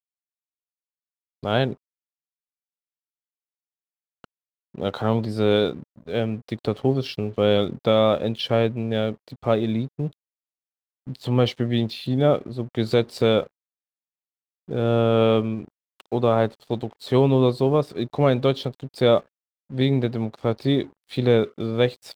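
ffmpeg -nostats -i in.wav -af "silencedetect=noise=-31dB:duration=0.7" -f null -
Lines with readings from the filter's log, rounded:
silence_start: 0.00
silence_end: 1.43 | silence_duration: 1.43
silence_start: 1.73
silence_end: 4.24 | silence_duration: 2.51
silence_start: 10.08
silence_end: 11.07 | silence_duration: 0.99
silence_start: 13.43
silence_end: 14.69 | silence_duration: 1.26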